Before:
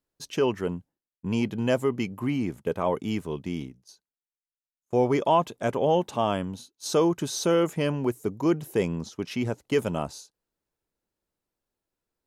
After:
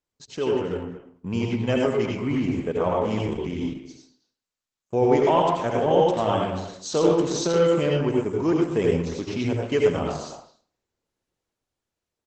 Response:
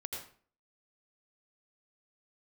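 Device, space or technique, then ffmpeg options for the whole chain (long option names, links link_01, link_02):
speakerphone in a meeting room: -filter_complex "[1:a]atrim=start_sample=2205[link_01];[0:a][link_01]afir=irnorm=-1:irlink=0,asplit=2[link_02][link_03];[link_03]adelay=230,highpass=300,lowpass=3400,asoftclip=type=hard:threshold=-20dB,volume=-11dB[link_04];[link_02][link_04]amix=inputs=2:normalize=0,dynaudnorm=framelen=210:gausssize=11:maxgain=4dB" -ar 48000 -c:a libopus -b:a 12k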